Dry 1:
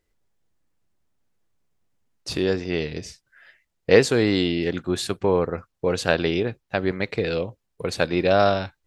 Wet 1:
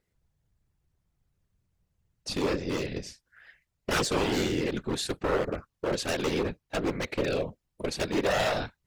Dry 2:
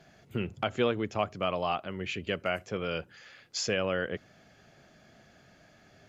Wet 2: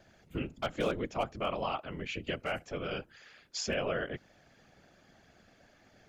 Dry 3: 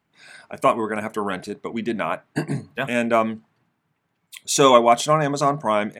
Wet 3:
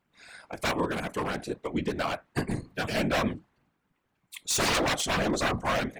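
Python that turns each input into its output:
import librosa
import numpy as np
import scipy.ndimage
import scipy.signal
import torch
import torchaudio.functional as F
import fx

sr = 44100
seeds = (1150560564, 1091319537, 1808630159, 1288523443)

y = 10.0 ** (-17.0 / 20.0) * (np.abs((x / 10.0 ** (-17.0 / 20.0) + 3.0) % 4.0 - 2.0) - 1.0)
y = fx.whisperise(y, sr, seeds[0])
y = y * librosa.db_to_amplitude(-3.5)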